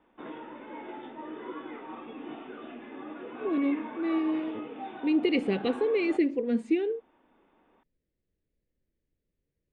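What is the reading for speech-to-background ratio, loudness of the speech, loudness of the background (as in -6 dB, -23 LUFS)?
12.5 dB, -29.0 LUFS, -41.5 LUFS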